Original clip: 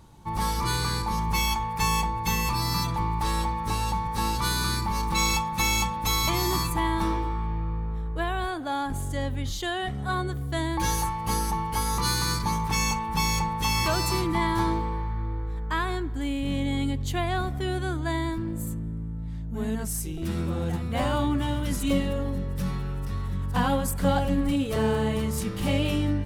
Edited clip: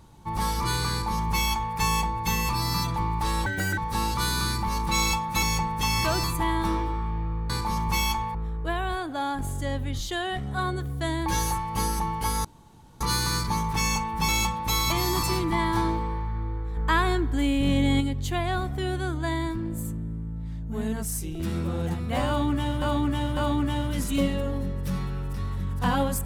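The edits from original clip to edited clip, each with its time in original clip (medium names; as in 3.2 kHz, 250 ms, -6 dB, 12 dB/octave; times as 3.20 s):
0.91–1.76 s: copy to 7.86 s
3.46–4.01 s: speed 174%
5.66–6.60 s: swap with 13.24–14.05 s
11.96 s: insert room tone 0.56 s
15.59–16.83 s: gain +5 dB
21.09–21.64 s: loop, 3 plays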